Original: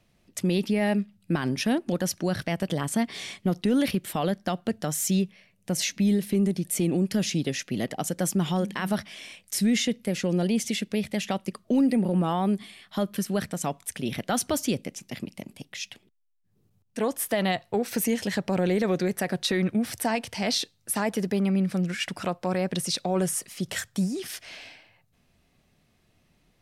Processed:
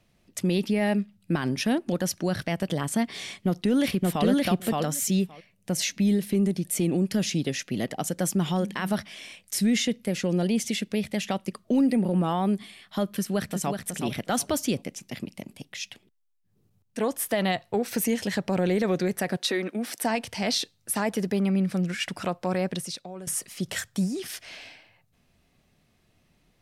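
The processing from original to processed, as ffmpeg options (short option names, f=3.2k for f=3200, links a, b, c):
-filter_complex "[0:a]asplit=2[a][b];[b]afade=t=in:st=3.26:d=0.01,afade=t=out:st=4.26:d=0.01,aecho=0:1:570|1140:0.944061|0.0944061[c];[a][c]amix=inputs=2:normalize=0,asplit=2[d][e];[e]afade=t=in:st=13.12:d=0.01,afade=t=out:st=13.81:d=0.01,aecho=0:1:370|740|1110:0.501187|0.100237|0.0200475[f];[d][f]amix=inputs=2:normalize=0,asettb=1/sr,asplit=3[g][h][i];[g]atrim=end=19.374[j];[h]atrim=start=19.37:end=20.04,asetpts=PTS-STARTPTS,afade=t=in:d=0.004:c=qsin,afade=t=out:st=0.666:d=0.004:c=qsin,highpass=f=250:w=0.5412,highpass=f=250:w=1.3066[k];[i]atrim=start=20.036[l];[j][k]acrossfade=d=0.004:c1=hsin:c2=qsin[m];[m][l]acrossfade=d=0.004:c1=qsin:c2=hsin,asplit=2[n][o];[n]atrim=end=23.27,asetpts=PTS-STARTPTS,afade=t=out:st=22.66:d=0.61:c=qua:silence=0.158489[p];[o]atrim=start=23.27,asetpts=PTS-STARTPTS,afade=t=in:d=0.004:c=hsin:silence=0.158489[q];[p][q]concat=n=2:v=0:a=1"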